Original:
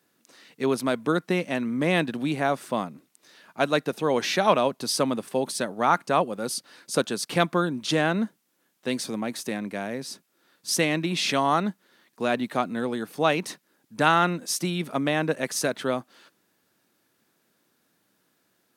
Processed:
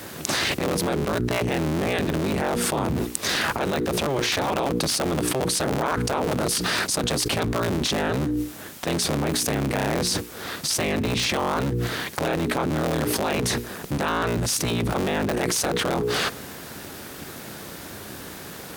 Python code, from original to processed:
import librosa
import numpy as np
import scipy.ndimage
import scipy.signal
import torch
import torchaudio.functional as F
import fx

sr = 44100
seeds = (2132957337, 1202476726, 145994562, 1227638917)

y = fx.cycle_switch(x, sr, every=3, mode='inverted')
y = scipy.signal.sosfilt(scipy.signal.butter(2, 58.0, 'highpass', fs=sr, output='sos'), y)
y = fx.low_shelf(y, sr, hz=280.0, db=7.5)
y = fx.hum_notches(y, sr, base_hz=60, count=8)
y = fx.env_flatten(y, sr, amount_pct=100)
y = F.gain(torch.from_numpy(y), -9.5).numpy()